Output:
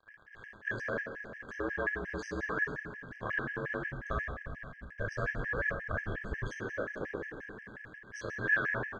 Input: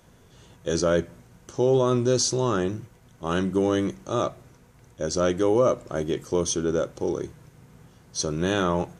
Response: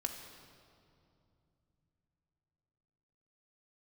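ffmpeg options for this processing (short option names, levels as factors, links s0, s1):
-filter_complex "[0:a]aeval=exprs='0.355*sin(PI/2*2*val(0)/0.355)':c=same,acompressor=threshold=0.0631:ratio=5,aemphasis=mode=production:type=75fm,aecho=1:1:458|916|1374:0.133|0.056|0.0235,aeval=exprs='val(0)*sin(2*PI*55*n/s)':c=same,acrusher=bits=5:mix=0:aa=0.000001[s0];[1:a]atrim=start_sample=2205,asetrate=66150,aresample=44100[s1];[s0][s1]afir=irnorm=-1:irlink=0,asplit=3[s2][s3][s4];[s2]afade=t=out:st=3.87:d=0.02[s5];[s3]asubboost=boost=5.5:cutoff=130,afade=t=in:st=3.87:d=0.02,afade=t=out:st=6.48:d=0.02[s6];[s4]afade=t=in:st=6.48:d=0.02[s7];[s5][s6][s7]amix=inputs=3:normalize=0,lowpass=f=1700:t=q:w=16,afftfilt=real='re*gt(sin(2*PI*5.6*pts/sr)*(1-2*mod(floor(b*sr/1024/1600),2)),0)':imag='im*gt(sin(2*PI*5.6*pts/sr)*(1-2*mod(floor(b*sr/1024/1600),2)),0)':win_size=1024:overlap=0.75,volume=0.562"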